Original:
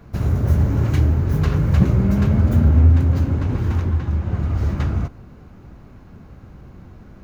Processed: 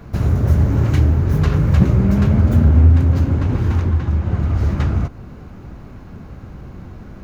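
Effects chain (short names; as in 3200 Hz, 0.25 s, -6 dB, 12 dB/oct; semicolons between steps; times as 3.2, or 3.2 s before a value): in parallel at -1 dB: compressor, threshold -28 dBFS, peak gain reduction 18.5 dB; on the sum: Doppler distortion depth 0.18 ms; gain +1 dB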